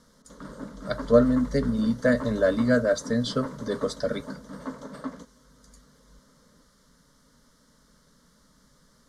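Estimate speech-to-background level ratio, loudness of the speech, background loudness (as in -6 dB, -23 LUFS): 14.5 dB, -25.0 LUFS, -39.5 LUFS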